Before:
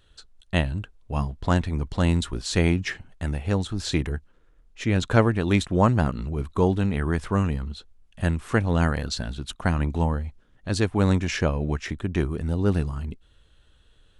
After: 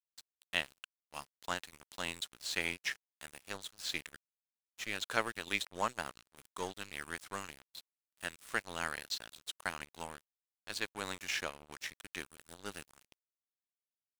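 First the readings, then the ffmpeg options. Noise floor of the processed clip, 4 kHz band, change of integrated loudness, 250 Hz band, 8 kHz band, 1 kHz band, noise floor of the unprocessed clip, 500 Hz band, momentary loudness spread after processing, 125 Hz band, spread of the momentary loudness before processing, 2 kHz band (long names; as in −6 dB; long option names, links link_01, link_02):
below −85 dBFS, −5.5 dB, −14.5 dB, −26.0 dB, −6.5 dB, −11.5 dB, −59 dBFS, −18.5 dB, 16 LU, −33.0 dB, 11 LU, −6.5 dB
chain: -filter_complex "[0:a]aderivative,acrossover=split=3500[link_01][link_02];[link_02]acompressor=threshold=-49dB:ratio=4:attack=1:release=60[link_03];[link_01][link_03]amix=inputs=2:normalize=0,aeval=exprs='sgn(val(0))*max(abs(val(0))-0.00299,0)':channel_layout=same,volume=7.5dB"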